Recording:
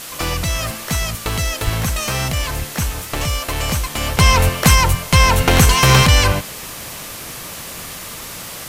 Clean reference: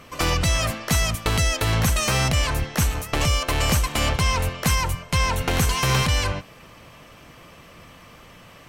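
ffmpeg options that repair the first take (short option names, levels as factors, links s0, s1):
-filter_complex "[0:a]asplit=3[s0][s1][s2];[s0]afade=t=out:st=1.64:d=0.02[s3];[s1]highpass=f=140:w=0.5412,highpass=f=140:w=1.3066,afade=t=in:st=1.64:d=0.02,afade=t=out:st=1.76:d=0.02[s4];[s2]afade=t=in:st=1.76:d=0.02[s5];[s3][s4][s5]amix=inputs=3:normalize=0,afwtdn=0.028,asetnsamples=n=441:p=0,asendcmd='4.17 volume volume -9.5dB',volume=1"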